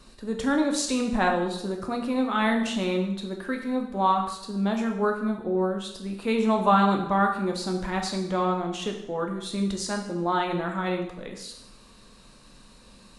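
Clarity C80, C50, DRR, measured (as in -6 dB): 8.5 dB, 6.5 dB, 2.0 dB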